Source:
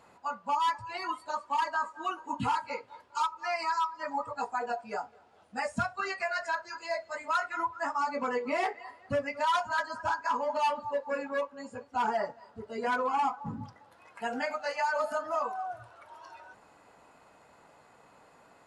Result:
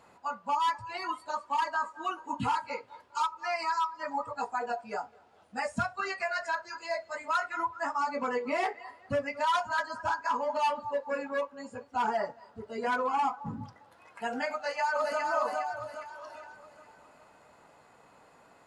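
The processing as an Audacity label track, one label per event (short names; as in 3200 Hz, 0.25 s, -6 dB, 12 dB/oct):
14.540000	15.210000	echo throw 0.41 s, feedback 45%, level -3 dB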